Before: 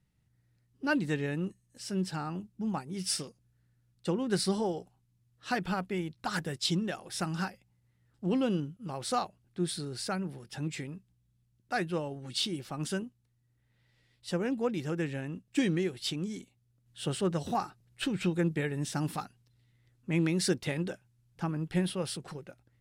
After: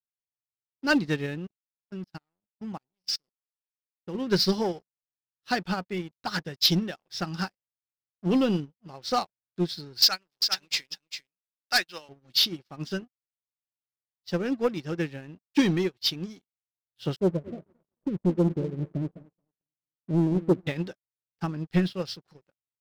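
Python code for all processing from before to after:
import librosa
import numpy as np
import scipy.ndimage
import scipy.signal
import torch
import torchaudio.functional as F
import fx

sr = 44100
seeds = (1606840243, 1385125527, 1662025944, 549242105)

y = fx.chain(x, sr, fx.env_lowpass(base_hz=560.0, full_db=-30.5),
    fx.level_steps(step_db=17), at=(1.37, 4.15))
y = fx.chain(y, sr, fx.weighting(curve='ITU-R 468'),
    fx.echo_single(ms=398, db=-5.0), at=(10.02, 12.09))
y = fx.chain(y, sr, fx.cheby1_lowpass(hz=650.0, order=8),
    fx.echo_feedback(ms=222, feedback_pct=42, wet_db=-10.5), at=(17.16, 20.67))
y = fx.high_shelf_res(y, sr, hz=6800.0, db=-11.0, q=3.0)
y = fx.leveller(y, sr, passes=3)
y = fx.upward_expand(y, sr, threshold_db=-40.0, expansion=2.5)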